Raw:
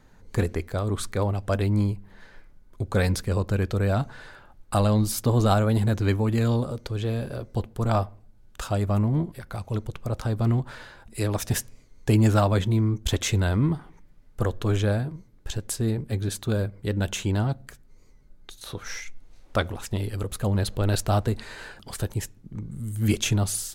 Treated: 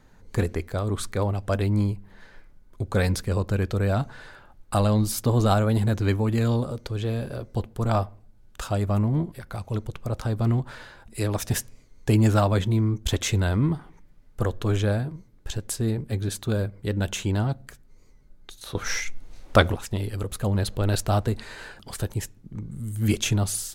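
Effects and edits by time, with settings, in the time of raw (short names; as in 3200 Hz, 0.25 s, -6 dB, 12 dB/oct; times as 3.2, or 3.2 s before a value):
18.75–19.75 gain +7.5 dB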